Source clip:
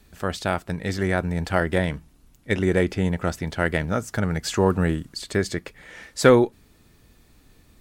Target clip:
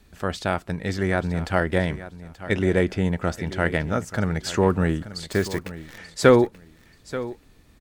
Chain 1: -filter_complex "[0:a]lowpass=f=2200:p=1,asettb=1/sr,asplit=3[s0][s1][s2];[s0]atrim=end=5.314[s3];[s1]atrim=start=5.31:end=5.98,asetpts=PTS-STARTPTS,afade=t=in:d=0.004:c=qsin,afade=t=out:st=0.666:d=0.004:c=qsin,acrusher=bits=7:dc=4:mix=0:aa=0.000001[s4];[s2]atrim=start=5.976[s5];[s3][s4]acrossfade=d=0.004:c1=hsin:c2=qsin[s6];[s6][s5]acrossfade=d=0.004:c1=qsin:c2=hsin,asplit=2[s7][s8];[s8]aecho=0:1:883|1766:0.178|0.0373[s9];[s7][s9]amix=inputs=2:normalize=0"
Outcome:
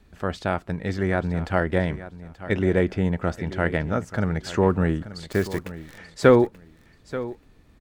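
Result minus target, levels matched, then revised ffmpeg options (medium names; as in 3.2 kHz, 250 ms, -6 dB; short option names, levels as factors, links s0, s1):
8 kHz band -7.0 dB
-filter_complex "[0:a]lowpass=f=7400:p=1,asettb=1/sr,asplit=3[s0][s1][s2];[s0]atrim=end=5.314[s3];[s1]atrim=start=5.31:end=5.98,asetpts=PTS-STARTPTS,afade=t=in:d=0.004:c=qsin,afade=t=out:st=0.666:d=0.004:c=qsin,acrusher=bits=7:dc=4:mix=0:aa=0.000001[s4];[s2]atrim=start=5.976[s5];[s3][s4]acrossfade=d=0.004:c1=hsin:c2=qsin[s6];[s6][s5]acrossfade=d=0.004:c1=qsin:c2=hsin,asplit=2[s7][s8];[s8]aecho=0:1:883|1766:0.178|0.0373[s9];[s7][s9]amix=inputs=2:normalize=0"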